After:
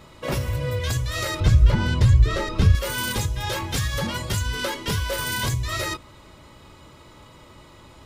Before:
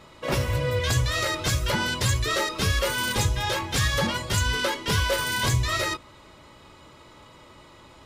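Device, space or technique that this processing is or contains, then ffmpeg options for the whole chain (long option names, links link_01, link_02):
ASMR close-microphone chain: -filter_complex "[0:a]lowshelf=frequency=220:gain=6.5,acompressor=threshold=-22dB:ratio=5,highshelf=frequency=10000:gain=7.5,asettb=1/sr,asplit=3[link_01][link_02][link_03];[link_01]atrim=end=1.404[link_04];[link_02]atrim=start=1.4:end=2.75,asetpts=PTS-STARTPTS,afade=type=in:duration=0.004:curve=qsin,afade=type=out:start_time=1.346:duration=0.004:curve=qsin,aemphasis=mode=reproduction:type=bsi[link_05];[link_03]atrim=start=2.746[link_06];[link_04][link_05]acrossfade=duration=0.004:curve1=hsin:curve2=qsin[link_07];[link_07][link_06]acrossfade=duration=0.004:curve1=qsin:curve2=hsin"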